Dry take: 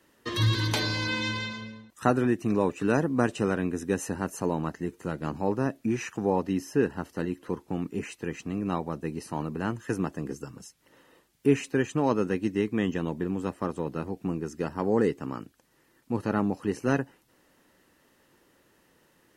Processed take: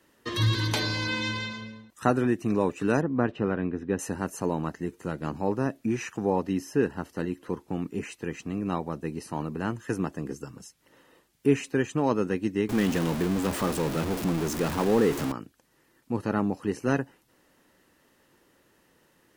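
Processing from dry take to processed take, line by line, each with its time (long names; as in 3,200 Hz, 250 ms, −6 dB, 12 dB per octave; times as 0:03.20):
0:03.01–0:03.99: high-frequency loss of the air 340 metres
0:12.69–0:15.32: converter with a step at zero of −27 dBFS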